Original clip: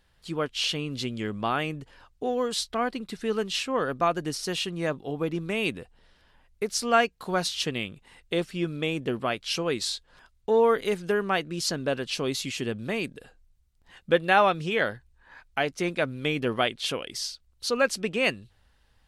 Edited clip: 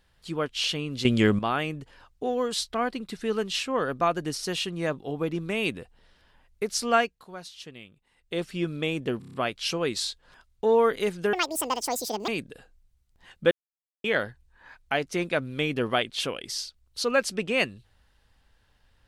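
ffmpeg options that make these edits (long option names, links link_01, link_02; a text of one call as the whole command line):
ffmpeg -i in.wav -filter_complex "[0:a]asplit=14[link_01][link_02][link_03][link_04][link_05][link_06][link_07][link_08][link_09][link_10][link_11][link_12][link_13][link_14];[link_01]atrim=end=1.052[link_15];[link_02]atrim=start=1.048:end=1.392,asetpts=PTS-STARTPTS,volume=11dB[link_16];[link_03]atrim=start=1.388:end=7.27,asetpts=PTS-STARTPTS,afade=type=out:start_time=5.542:duration=0.34:silence=0.188365[link_17];[link_04]atrim=start=7.27:end=8.16,asetpts=PTS-STARTPTS,volume=-14.5dB[link_18];[link_05]atrim=start=8.16:end=9.222,asetpts=PTS-STARTPTS,afade=type=in:duration=0.34:silence=0.188365[link_19];[link_06]atrim=start=9.188:end=9.222[link_20];[link_07]atrim=start=9.188:end=9.222[link_21];[link_08]atrim=start=9.188:end=9.222[link_22];[link_09]atrim=start=9.188:end=9.222[link_23];[link_10]atrim=start=9.188:end=11.184[link_24];[link_11]atrim=start=11.18:end=12.94,asetpts=PTS-STARTPTS,asetrate=81585,aresample=44100[link_25];[link_12]atrim=start=12.936:end=14.17,asetpts=PTS-STARTPTS,afade=type=out:start_time=1.23:duration=0.004:curve=hsin[link_26];[link_13]atrim=start=14.17:end=14.7,asetpts=PTS-STARTPTS,volume=0[link_27];[link_14]atrim=start=14.7,asetpts=PTS-STARTPTS,afade=type=in:duration=0.004:curve=hsin[link_28];[link_15][link_16]acrossfade=duration=0.004:curve1=hsin:curve2=hsin[link_29];[link_17][link_18][link_19]concat=n=3:v=0:a=1[link_30];[link_29][link_30]acrossfade=duration=0.004:curve1=hsin:curve2=hsin[link_31];[link_31][link_20]acrossfade=duration=0.004:curve1=hsin:curve2=hsin[link_32];[link_32][link_21]acrossfade=duration=0.004:curve1=hsin:curve2=hsin[link_33];[link_33][link_22]acrossfade=duration=0.004:curve1=hsin:curve2=hsin[link_34];[link_34][link_23]acrossfade=duration=0.004:curve1=hsin:curve2=hsin[link_35];[link_35][link_24]acrossfade=duration=0.004:curve1=hsin:curve2=hsin[link_36];[link_36][link_25]acrossfade=duration=0.004:curve1=hsin:curve2=hsin[link_37];[link_26][link_27][link_28]concat=n=3:v=0:a=1[link_38];[link_37][link_38]acrossfade=duration=0.004:curve1=hsin:curve2=hsin" out.wav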